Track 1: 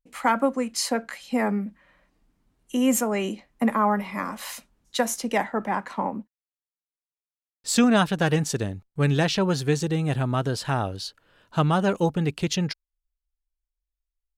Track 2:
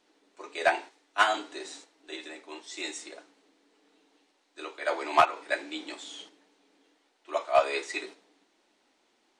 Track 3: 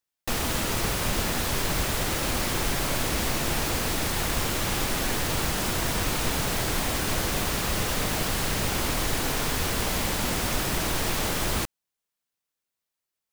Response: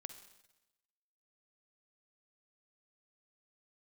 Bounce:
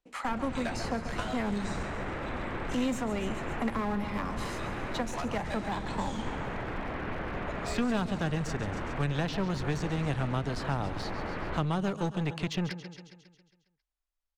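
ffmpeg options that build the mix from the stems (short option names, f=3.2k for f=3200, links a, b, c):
-filter_complex "[0:a]lowpass=7.3k,equalizer=f=960:w=0.71:g=6.5,volume=-1dB,asplit=3[a][b][c];[b]volume=-15dB[d];[1:a]alimiter=limit=-14dB:level=0:latency=1:release=448,volume=0dB,asplit=2[e][f];[f]volume=-11.5dB[g];[2:a]lowpass=f=2.1k:w=0.5412,lowpass=f=2.1k:w=1.3066,bandreject=f=50:t=h:w=6,bandreject=f=100:t=h:w=6,bandreject=f=150:t=h:w=6,volume=-3dB[h];[c]apad=whole_len=414530[i];[e][i]sidechaingate=range=-23dB:threshold=-50dB:ratio=16:detection=peak[j];[d][g]amix=inputs=2:normalize=0,aecho=0:1:136|272|408|544|680|816|952|1088:1|0.55|0.303|0.166|0.0915|0.0503|0.0277|0.0152[k];[a][j][h][k]amix=inputs=4:normalize=0,lowshelf=f=180:g=-4.5,acrossover=split=250|660|3100[l][m][n][o];[l]acompressor=threshold=-27dB:ratio=4[p];[m]acompressor=threshold=-39dB:ratio=4[q];[n]acompressor=threshold=-38dB:ratio=4[r];[o]acompressor=threshold=-46dB:ratio=4[s];[p][q][r][s]amix=inputs=4:normalize=0,aeval=exprs='clip(val(0),-1,0.0282)':c=same"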